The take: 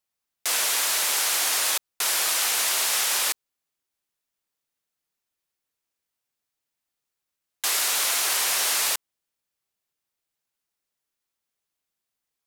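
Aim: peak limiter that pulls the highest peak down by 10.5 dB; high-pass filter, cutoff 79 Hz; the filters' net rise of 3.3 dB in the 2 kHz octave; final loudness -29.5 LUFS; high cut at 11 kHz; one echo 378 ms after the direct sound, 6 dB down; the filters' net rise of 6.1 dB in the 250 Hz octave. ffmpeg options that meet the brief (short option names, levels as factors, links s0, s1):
-af "highpass=79,lowpass=11000,equalizer=f=250:t=o:g=8.5,equalizer=f=2000:t=o:g=4,alimiter=limit=0.0794:level=0:latency=1,aecho=1:1:378:0.501,volume=0.944"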